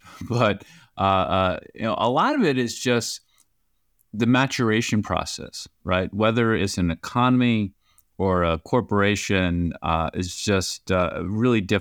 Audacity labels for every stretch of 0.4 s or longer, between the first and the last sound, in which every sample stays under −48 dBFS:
3.420000	3.990000	silence